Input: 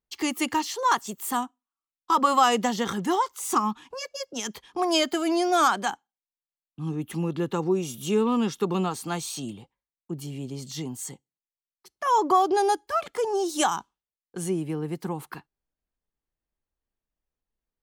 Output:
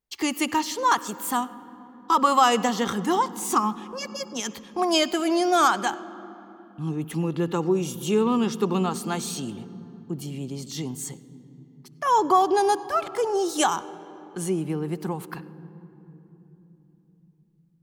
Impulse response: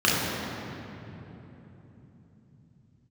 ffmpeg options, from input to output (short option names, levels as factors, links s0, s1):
-filter_complex "[0:a]asplit=2[s0][s1];[1:a]atrim=start_sample=2205,adelay=64[s2];[s1][s2]afir=irnorm=-1:irlink=0,volume=0.0178[s3];[s0][s3]amix=inputs=2:normalize=0,volume=1.19"